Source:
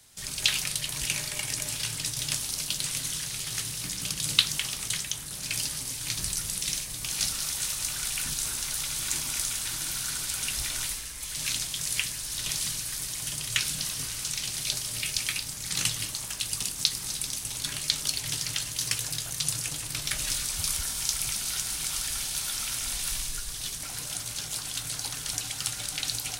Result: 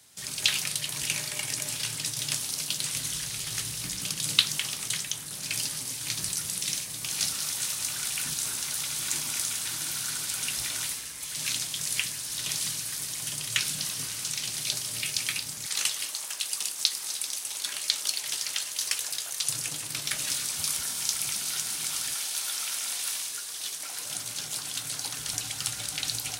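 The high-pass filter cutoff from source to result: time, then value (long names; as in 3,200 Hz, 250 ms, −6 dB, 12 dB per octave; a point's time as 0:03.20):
120 Hz
from 0:02.95 40 Hz
from 0:04.00 120 Hz
from 0:15.66 500 Hz
from 0:19.49 160 Hz
from 0:22.14 400 Hz
from 0:24.06 150 Hz
from 0:25.19 69 Hz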